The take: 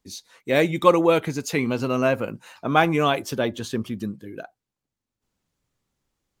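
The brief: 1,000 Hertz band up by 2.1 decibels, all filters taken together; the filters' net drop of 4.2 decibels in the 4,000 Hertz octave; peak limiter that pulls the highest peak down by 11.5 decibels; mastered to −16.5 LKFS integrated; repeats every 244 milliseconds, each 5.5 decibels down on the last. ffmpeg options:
ffmpeg -i in.wav -af "equalizer=frequency=1000:width_type=o:gain=3,equalizer=frequency=4000:width_type=o:gain=-5.5,alimiter=limit=-11dB:level=0:latency=1,aecho=1:1:244|488|732|976|1220|1464|1708:0.531|0.281|0.149|0.079|0.0419|0.0222|0.0118,volume=7dB" out.wav

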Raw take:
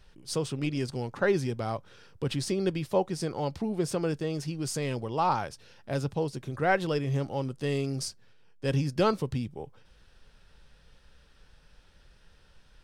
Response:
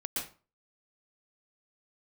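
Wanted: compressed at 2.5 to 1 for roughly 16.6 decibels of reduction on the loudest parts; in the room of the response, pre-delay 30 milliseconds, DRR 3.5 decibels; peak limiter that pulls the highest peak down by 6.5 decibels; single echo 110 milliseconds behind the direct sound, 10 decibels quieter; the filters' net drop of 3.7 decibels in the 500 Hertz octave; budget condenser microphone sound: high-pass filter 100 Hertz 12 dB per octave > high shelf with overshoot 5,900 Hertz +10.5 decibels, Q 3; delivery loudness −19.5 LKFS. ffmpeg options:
-filter_complex "[0:a]equalizer=frequency=500:width_type=o:gain=-4.5,acompressor=threshold=-49dB:ratio=2.5,alimiter=level_in=14dB:limit=-24dB:level=0:latency=1,volume=-14dB,aecho=1:1:110:0.316,asplit=2[link_01][link_02];[1:a]atrim=start_sample=2205,adelay=30[link_03];[link_02][link_03]afir=irnorm=-1:irlink=0,volume=-6.5dB[link_04];[link_01][link_04]amix=inputs=2:normalize=0,highpass=100,highshelf=frequency=5900:width_type=q:width=3:gain=10.5,volume=22.5dB"

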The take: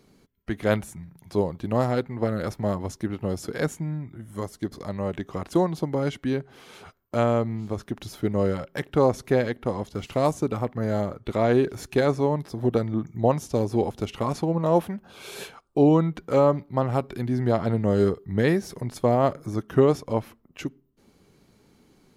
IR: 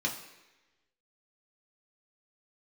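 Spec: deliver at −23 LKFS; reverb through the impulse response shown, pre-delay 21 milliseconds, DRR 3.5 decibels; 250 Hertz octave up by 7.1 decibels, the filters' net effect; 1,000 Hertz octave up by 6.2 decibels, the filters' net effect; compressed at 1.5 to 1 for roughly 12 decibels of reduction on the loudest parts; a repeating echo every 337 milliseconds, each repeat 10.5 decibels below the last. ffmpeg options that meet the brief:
-filter_complex "[0:a]equalizer=frequency=250:width_type=o:gain=8.5,equalizer=frequency=1000:width_type=o:gain=7.5,acompressor=threshold=-42dB:ratio=1.5,aecho=1:1:337|674|1011:0.299|0.0896|0.0269,asplit=2[link_01][link_02];[1:a]atrim=start_sample=2205,adelay=21[link_03];[link_02][link_03]afir=irnorm=-1:irlink=0,volume=-9.5dB[link_04];[link_01][link_04]amix=inputs=2:normalize=0,volume=5.5dB"

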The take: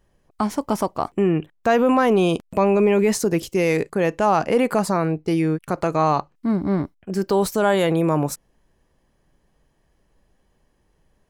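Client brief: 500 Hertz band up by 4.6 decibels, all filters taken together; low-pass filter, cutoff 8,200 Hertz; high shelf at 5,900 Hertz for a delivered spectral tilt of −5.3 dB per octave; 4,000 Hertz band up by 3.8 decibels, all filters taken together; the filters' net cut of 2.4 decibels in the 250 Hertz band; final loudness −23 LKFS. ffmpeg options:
ffmpeg -i in.wav -af "lowpass=8200,equalizer=frequency=250:width_type=o:gain=-6.5,equalizer=frequency=500:width_type=o:gain=7.5,equalizer=frequency=4000:width_type=o:gain=3.5,highshelf=frequency=5900:gain=5,volume=-5dB" out.wav

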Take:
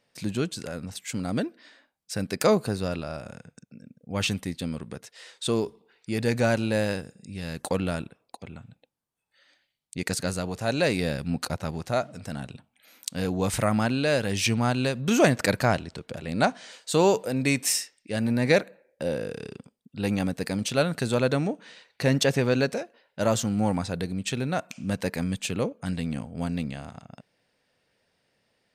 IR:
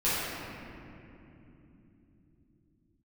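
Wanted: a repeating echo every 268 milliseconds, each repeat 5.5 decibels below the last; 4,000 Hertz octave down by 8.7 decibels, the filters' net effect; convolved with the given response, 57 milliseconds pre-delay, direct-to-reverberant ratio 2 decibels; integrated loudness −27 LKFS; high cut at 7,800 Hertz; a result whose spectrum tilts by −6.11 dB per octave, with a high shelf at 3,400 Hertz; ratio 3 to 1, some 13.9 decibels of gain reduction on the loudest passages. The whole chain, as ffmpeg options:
-filter_complex "[0:a]lowpass=7800,highshelf=frequency=3400:gain=-6,equalizer=frequency=4000:width_type=o:gain=-6.5,acompressor=threshold=-35dB:ratio=3,aecho=1:1:268|536|804|1072|1340|1608|1876:0.531|0.281|0.149|0.079|0.0419|0.0222|0.0118,asplit=2[link_01][link_02];[1:a]atrim=start_sample=2205,adelay=57[link_03];[link_02][link_03]afir=irnorm=-1:irlink=0,volume=-14.5dB[link_04];[link_01][link_04]amix=inputs=2:normalize=0,volume=6.5dB"

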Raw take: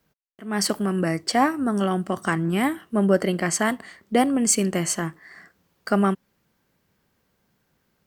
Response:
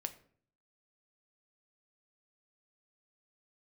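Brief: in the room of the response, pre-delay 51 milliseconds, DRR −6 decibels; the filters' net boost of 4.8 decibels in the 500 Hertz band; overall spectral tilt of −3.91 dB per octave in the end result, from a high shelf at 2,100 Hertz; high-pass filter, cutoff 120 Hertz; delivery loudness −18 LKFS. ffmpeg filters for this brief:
-filter_complex "[0:a]highpass=120,equalizer=frequency=500:width_type=o:gain=6,highshelf=frequency=2100:gain=4,asplit=2[link_01][link_02];[1:a]atrim=start_sample=2205,adelay=51[link_03];[link_02][link_03]afir=irnorm=-1:irlink=0,volume=7.5dB[link_04];[link_01][link_04]amix=inputs=2:normalize=0,volume=-4.5dB"

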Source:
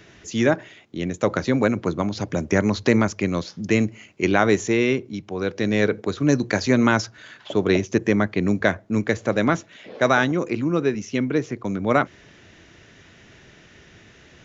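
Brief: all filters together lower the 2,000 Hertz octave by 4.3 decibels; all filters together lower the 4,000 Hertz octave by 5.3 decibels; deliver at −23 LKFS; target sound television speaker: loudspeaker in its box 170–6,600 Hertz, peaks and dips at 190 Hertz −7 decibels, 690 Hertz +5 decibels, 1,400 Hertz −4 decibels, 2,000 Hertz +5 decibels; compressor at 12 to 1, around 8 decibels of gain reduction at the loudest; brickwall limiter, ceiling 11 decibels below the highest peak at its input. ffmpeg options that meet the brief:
ffmpeg -i in.wav -af "equalizer=frequency=2000:width_type=o:gain=-5.5,equalizer=frequency=4000:width_type=o:gain=-5,acompressor=threshold=-21dB:ratio=12,alimiter=limit=-20.5dB:level=0:latency=1,highpass=frequency=170:width=0.5412,highpass=frequency=170:width=1.3066,equalizer=frequency=190:width_type=q:width=4:gain=-7,equalizer=frequency=690:width_type=q:width=4:gain=5,equalizer=frequency=1400:width_type=q:width=4:gain=-4,equalizer=frequency=2000:width_type=q:width=4:gain=5,lowpass=frequency=6600:width=0.5412,lowpass=frequency=6600:width=1.3066,volume=10dB" out.wav

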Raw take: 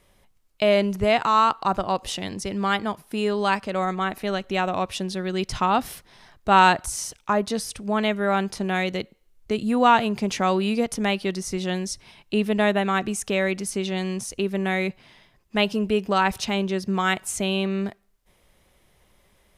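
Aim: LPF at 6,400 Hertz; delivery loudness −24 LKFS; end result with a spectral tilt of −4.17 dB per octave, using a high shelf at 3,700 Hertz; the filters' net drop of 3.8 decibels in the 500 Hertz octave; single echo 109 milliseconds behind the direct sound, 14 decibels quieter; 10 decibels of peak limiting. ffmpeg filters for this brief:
ffmpeg -i in.wav -af "lowpass=6400,equalizer=frequency=500:width_type=o:gain=-5,highshelf=frequency=3700:gain=-4.5,alimiter=limit=-15.5dB:level=0:latency=1,aecho=1:1:109:0.2,volume=3.5dB" out.wav

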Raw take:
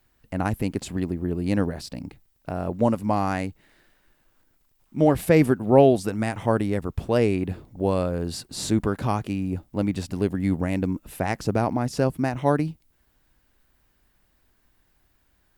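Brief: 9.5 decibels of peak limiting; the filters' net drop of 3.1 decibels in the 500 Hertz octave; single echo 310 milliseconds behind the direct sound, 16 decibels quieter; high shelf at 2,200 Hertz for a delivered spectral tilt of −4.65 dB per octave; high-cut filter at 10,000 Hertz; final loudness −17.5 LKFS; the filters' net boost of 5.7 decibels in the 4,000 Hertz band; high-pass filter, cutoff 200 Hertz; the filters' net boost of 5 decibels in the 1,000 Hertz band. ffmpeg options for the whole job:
ffmpeg -i in.wav -af "highpass=200,lowpass=10000,equalizer=frequency=500:width_type=o:gain=-6.5,equalizer=frequency=1000:width_type=o:gain=8.5,highshelf=frequency=2200:gain=3.5,equalizer=frequency=4000:width_type=o:gain=3.5,alimiter=limit=-12.5dB:level=0:latency=1,aecho=1:1:310:0.158,volume=10.5dB" out.wav

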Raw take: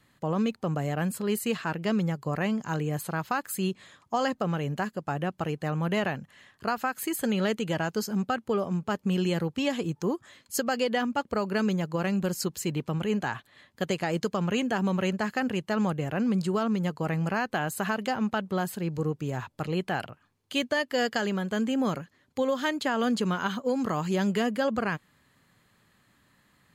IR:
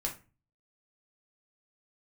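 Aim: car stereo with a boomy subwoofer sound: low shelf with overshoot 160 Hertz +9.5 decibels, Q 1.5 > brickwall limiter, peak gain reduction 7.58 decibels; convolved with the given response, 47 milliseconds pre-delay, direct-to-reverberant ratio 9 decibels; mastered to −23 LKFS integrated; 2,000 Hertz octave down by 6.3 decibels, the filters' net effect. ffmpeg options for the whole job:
-filter_complex "[0:a]equalizer=frequency=2000:width_type=o:gain=-8.5,asplit=2[link_01][link_02];[1:a]atrim=start_sample=2205,adelay=47[link_03];[link_02][link_03]afir=irnorm=-1:irlink=0,volume=-11.5dB[link_04];[link_01][link_04]amix=inputs=2:normalize=0,lowshelf=frequency=160:width_type=q:width=1.5:gain=9.5,volume=8.5dB,alimiter=limit=-14.5dB:level=0:latency=1"

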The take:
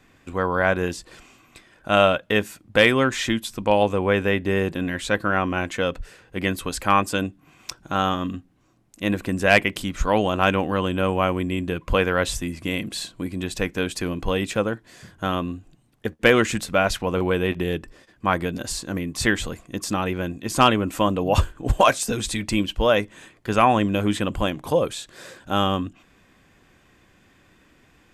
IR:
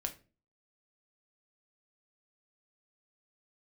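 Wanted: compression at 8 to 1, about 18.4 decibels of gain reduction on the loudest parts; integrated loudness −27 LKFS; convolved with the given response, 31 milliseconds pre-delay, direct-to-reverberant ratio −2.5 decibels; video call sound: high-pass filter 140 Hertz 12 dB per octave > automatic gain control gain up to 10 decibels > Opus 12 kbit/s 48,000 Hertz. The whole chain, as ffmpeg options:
-filter_complex "[0:a]acompressor=threshold=-31dB:ratio=8,asplit=2[link_01][link_02];[1:a]atrim=start_sample=2205,adelay=31[link_03];[link_02][link_03]afir=irnorm=-1:irlink=0,volume=2.5dB[link_04];[link_01][link_04]amix=inputs=2:normalize=0,highpass=140,dynaudnorm=maxgain=10dB,volume=-0.5dB" -ar 48000 -c:a libopus -b:a 12k

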